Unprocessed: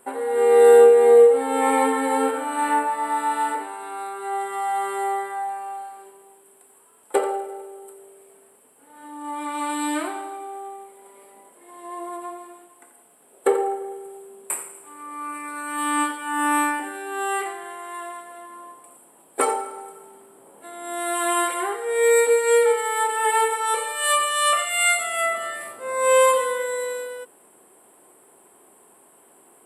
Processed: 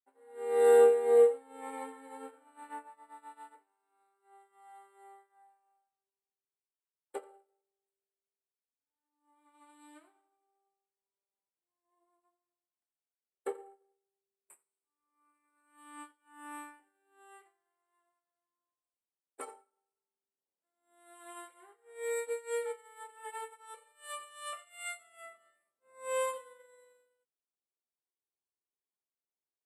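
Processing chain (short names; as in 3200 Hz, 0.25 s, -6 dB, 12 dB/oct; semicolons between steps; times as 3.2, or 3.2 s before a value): upward expander 2.5:1, over -38 dBFS; gain -9 dB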